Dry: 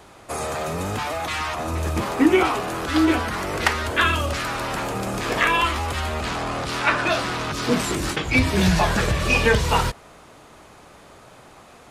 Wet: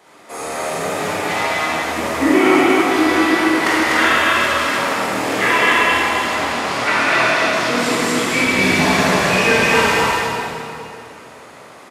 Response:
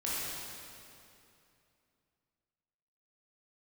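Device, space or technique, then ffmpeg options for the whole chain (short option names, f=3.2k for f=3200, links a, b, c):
stadium PA: -filter_complex "[0:a]highpass=220,equalizer=f=2k:t=o:w=0.25:g=5.5,aecho=1:1:183.7|247.8:0.282|0.794[a];[1:a]atrim=start_sample=2205[b];[a][b]afir=irnorm=-1:irlink=0,volume=-1.5dB"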